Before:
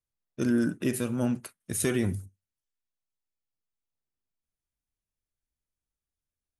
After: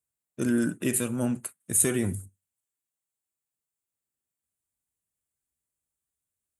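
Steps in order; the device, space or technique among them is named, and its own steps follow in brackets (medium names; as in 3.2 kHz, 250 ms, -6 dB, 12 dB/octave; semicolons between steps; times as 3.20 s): budget condenser microphone (high-pass 73 Hz; resonant high shelf 6.5 kHz +6 dB, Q 3); 0.44–1.08 s: dynamic bell 3 kHz, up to +5 dB, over -46 dBFS, Q 0.85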